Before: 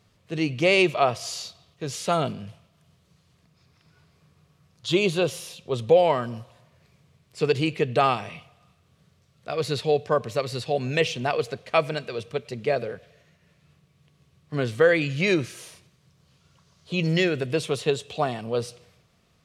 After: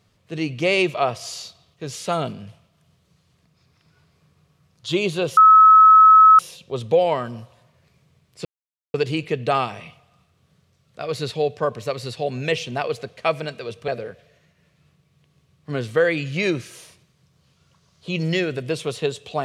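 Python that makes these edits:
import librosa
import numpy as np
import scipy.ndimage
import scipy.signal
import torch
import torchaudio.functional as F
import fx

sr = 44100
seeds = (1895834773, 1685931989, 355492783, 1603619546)

y = fx.edit(x, sr, fx.insert_tone(at_s=5.37, length_s=1.02, hz=1290.0, db=-6.5),
    fx.insert_silence(at_s=7.43, length_s=0.49),
    fx.cut(start_s=12.37, length_s=0.35), tone=tone)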